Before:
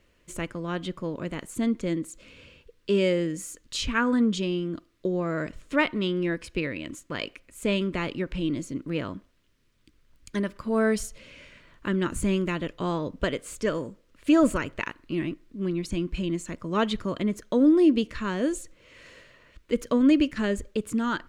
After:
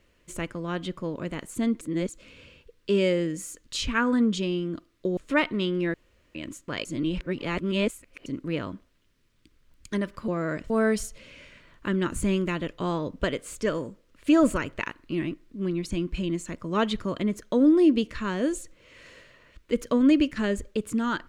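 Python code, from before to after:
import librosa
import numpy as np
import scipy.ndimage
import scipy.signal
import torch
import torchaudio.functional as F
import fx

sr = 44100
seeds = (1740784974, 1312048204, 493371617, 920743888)

y = fx.edit(x, sr, fx.reverse_span(start_s=1.81, length_s=0.28),
    fx.move(start_s=5.17, length_s=0.42, to_s=10.7),
    fx.room_tone_fill(start_s=6.36, length_s=0.41),
    fx.reverse_span(start_s=7.27, length_s=1.41), tone=tone)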